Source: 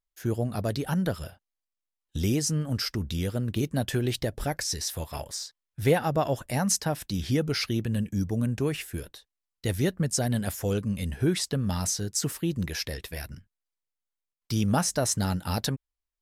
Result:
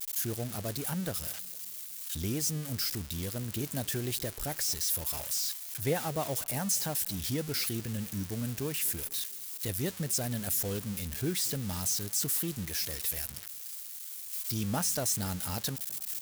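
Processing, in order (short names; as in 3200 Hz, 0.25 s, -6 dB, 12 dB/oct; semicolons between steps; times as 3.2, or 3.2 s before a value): switching spikes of -18.5 dBFS; tape echo 0.227 s, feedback 57%, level -22 dB; gain -8 dB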